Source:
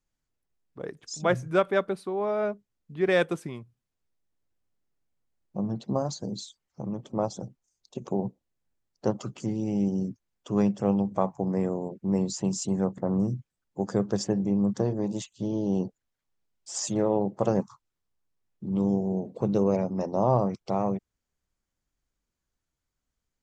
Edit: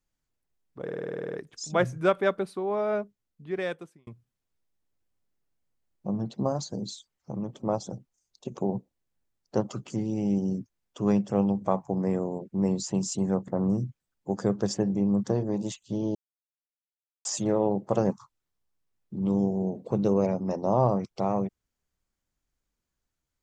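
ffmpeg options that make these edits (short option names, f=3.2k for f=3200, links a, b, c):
-filter_complex "[0:a]asplit=14[a][b][c][d][e][f][g][h][i][j][k][l][m][n];[a]atrim=end=0.882[o];[b]atrim=start=0.828:end=0.882[p];[c]atrim=start=0.828:end=0.882[q];[d]atrim=start=0.828:end=0.882[r];[e]atrim=start=0.828:end=0.882[s];[f]atrim=start=0.828:end=0.882[t];[g]atrim=start=0.828:end=0.882[u];[h]atrim=start=0.828:end=0.882[v];[i]atrim=start=0.828:end=0.882[w];[j]atrim=start=0.828:end=0.882[x];[k]atrim=start=0.828:end=3.57,asetpts=PTS-STARTPTS,afade=t=out:st=1.632:d=1.11[y];[l]atrim=start=3.57:end=15.65,asetpts=PTS-STARTPTS,afade=t=in:d=0.004:c=hsin,afade=t=out:st=12.076:d=0.004:c=hsin[z];[m]atrim=start=15.65:end=16.75,asetpts=PTS-STARTPTS,volume=0[aa];[n]atrim=start=16.75,asetpts=PTS-STARTPTS,afade=t=in:d=0.004:c=hsin[ab];[o][p]acrossfade=d=0.004:c1=hsin:c2=hsin[ac];[ac][q]acrossfade=d=0.004:c1=hsin:c2=hsin[ad];[ad][r]acrossfade=d=0.004:c1=hsin:c2=hsin[ae];[ae][s]acrossfade=d=0.004:c1=hsin:c2=hsin[af];[af][t]acrossfade=d=0.004:c1=hsin:c2=hsin[ag];[ag][u]acrossfade=d=0.004:c1=hsin:c2=hsin[ah];[ah][v]acrossfade=d=0.004:c1=hsin:c2=hsin[ai];[ai][w]acrossfade=d=0.004:c1=hsin:c2=hsin[aj];[aj][x]acrossfade=d=0.004:c1=hsin:c2=hsin[ak];[y][z][aa][ab]concat=n=4:v=0:a=1[al];[ak][al]acrossfade=d=0.004:c1=hsin:c2=hsin"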